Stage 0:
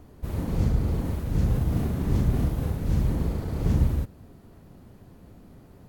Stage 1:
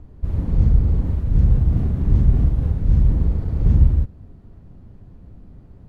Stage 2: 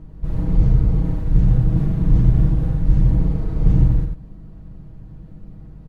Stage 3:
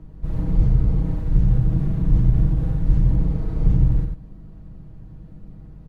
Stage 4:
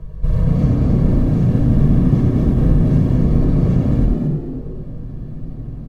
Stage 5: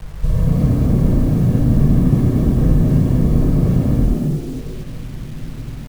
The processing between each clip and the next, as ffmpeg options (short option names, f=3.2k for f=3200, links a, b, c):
-af "aemphasis=mode=reproduction:type=bsi,volume=-3.5dB"
-filter_complex "[0:a]asplit=2[a][b];[b]aecho=0:1:90:0.531[c];[a][c]amix=inputs=2:normalize=0,aeval=exprs='val(0)+0.01*(sin(2*PI*50*n/s)+sin(2*PI*2*50*n/s)/2+sin(2*PI*3*50*n/s)/3+sin(2*PI*4*50*n/s)/4+sin(2*PI*5*50*n/s)/5)':c=same,aecho=1:1:6.3:0.71"
-filter_complex "[0:a]acrossover=split=150[a][b];[b]acompressor=threshold=-23dB:ratio=6[c];[a][c]amix=inputs=2:normalize=0,volume=-2dB"
-filter_complex "[0:a]afftfilt=real='re*lt(hypot(re,im),1.26)':imag='im*lt(hypot(re,im),1.26)':win_size=1024:overlap=0.75,aecho=1:1:1.8:0.99,asplit=2[a][b];[b]asplit=4[c][d][e][f];[c]adelay=224,afreqshift=110,volume=-4.5dB[g];[d]adelay=448,afreqshift=220,volume=-14.4dB[h];[e]adelay=672,afreqshift=330,volume=-24.3dB[i];[f]adelay=896,afreqshift=440,volume=-34.2dB[j];[g][h][i][j]amix=inputs=4:normalize=0[k];[a][k]amix=inputs=2:normalize=0,volume=5dB"
-af "acrusher=bits=6:mix=0:aa=0.000001"